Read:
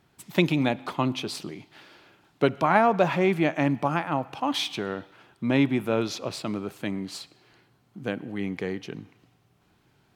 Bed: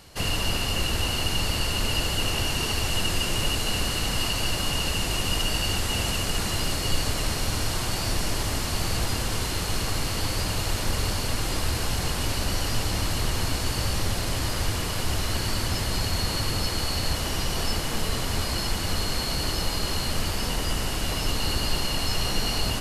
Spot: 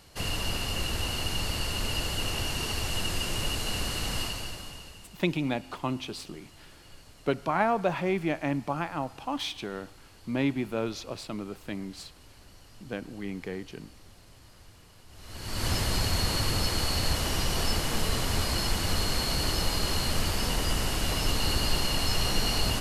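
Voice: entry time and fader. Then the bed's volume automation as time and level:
4.85 s, -5.5 dB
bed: 4.19 s -5 dB
5.19 s -27 dB
15.08 s -27 dB
15.67 s -1 dB

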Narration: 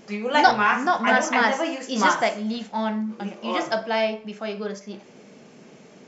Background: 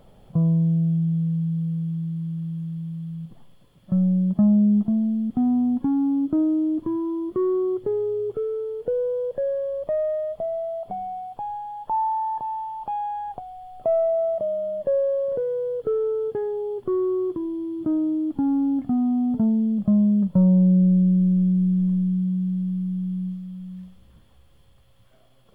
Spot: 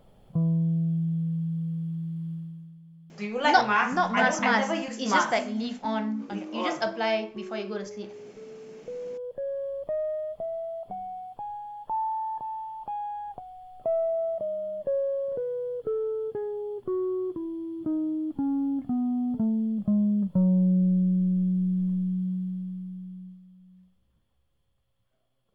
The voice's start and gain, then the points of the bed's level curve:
3.10 s, -3.5 dB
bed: 2.33 s -5 dB
2.8 s -18.5 dB
8.39 s -18.5 dB
9.64 s -5.5 dB
22.31 s -5.5 dB
23.56 s -17.5 dB

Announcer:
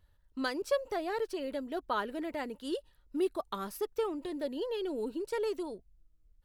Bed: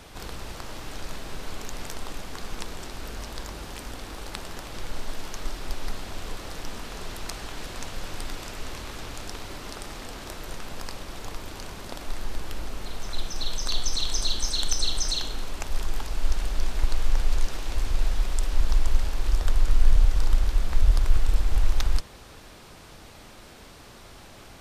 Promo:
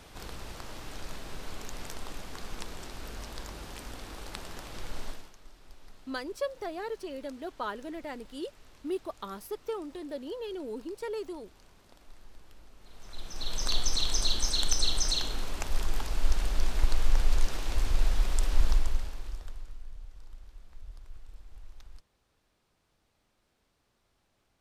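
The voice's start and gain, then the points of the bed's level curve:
5.70 s, -2.5 dB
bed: 5.08 s -5 dB
5.36 s -21 dB
12.77 s -21 dB
13.62 s -1.5 dB
18.67 s -1.5 dB
19.87 s -27 dB

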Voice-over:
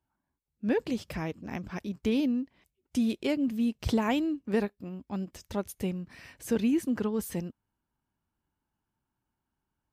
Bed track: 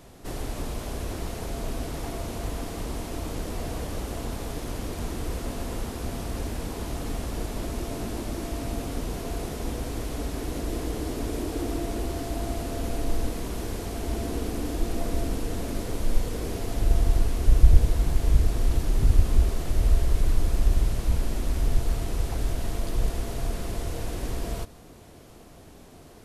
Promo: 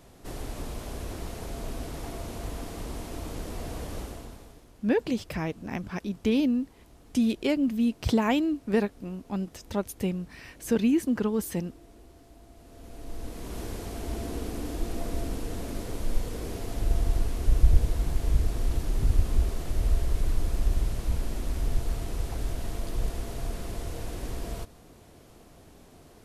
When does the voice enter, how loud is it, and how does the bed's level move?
4.20 s, +3.0 dB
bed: 4.01 s -4 dB
4.71 s -22.5 dB
12.52 s -22.5 dB
13.58 s -4 dB

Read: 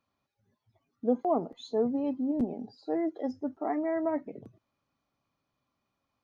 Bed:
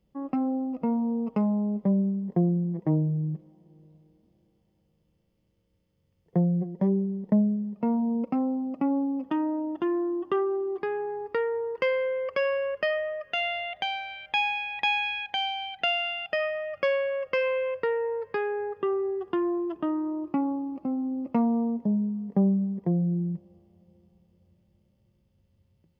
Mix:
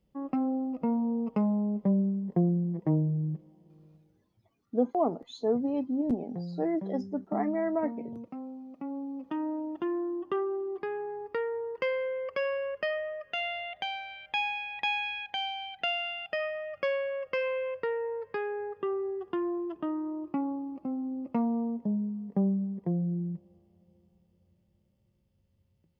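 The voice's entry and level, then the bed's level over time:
3.70 s, +0.5 dB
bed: 3.94 s -2 dB
4.44 s -14 dB
8.68 s -14 dB
9.49 s -4.5 dB

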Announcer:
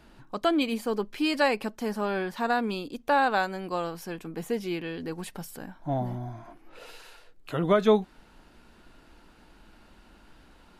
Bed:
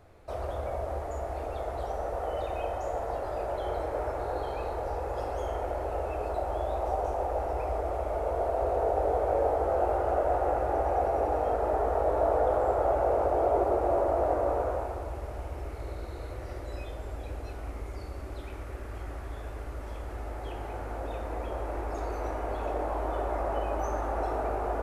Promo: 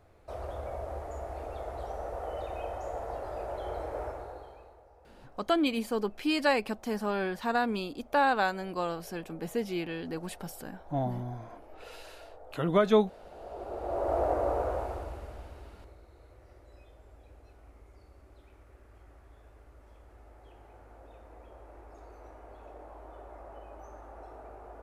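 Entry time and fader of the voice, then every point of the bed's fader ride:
5.05 s, -2.0 dB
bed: 4.05 s -4.5 dB
4.89 s -26 dB
13.21 s -26 dB
14.14 s -1.5 dB
14.93 s -1.5 dB
16.04 s -17 dB

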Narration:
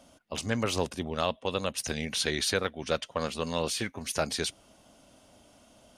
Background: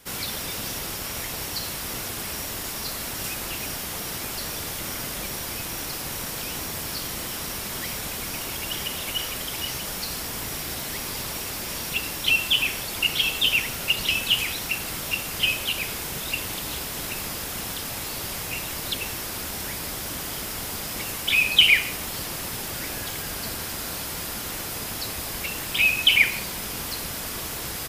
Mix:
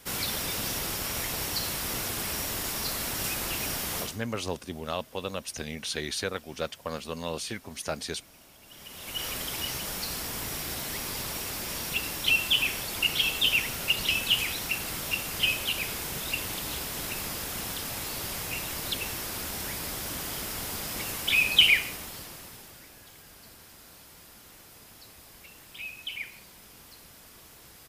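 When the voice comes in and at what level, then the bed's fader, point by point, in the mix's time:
3.70 s, -3.5 dB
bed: 4.01 s -0.5 dB
4.23 s -24 dB
8.61 s -24 dB
9.27 s -3 dB
21.64 s -3 dB
22.91 s -19.5 dB

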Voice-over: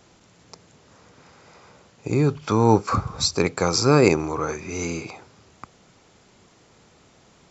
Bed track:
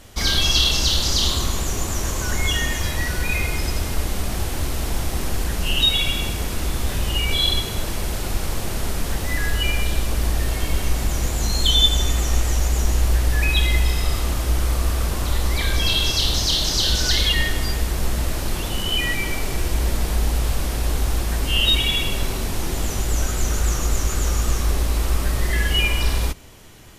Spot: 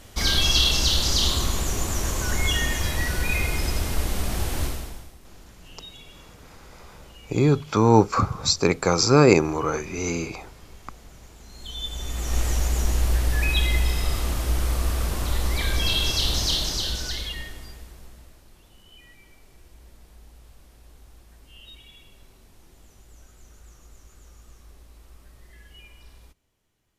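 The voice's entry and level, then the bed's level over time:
5.25 s, +1.0 dB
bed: 4.65 s -2 dB
5.19 s -26 dB
11.45 s -26 dB
12.41 s -3.5 dB
16.52 s -3.5 dB
18.46 s -29 dB

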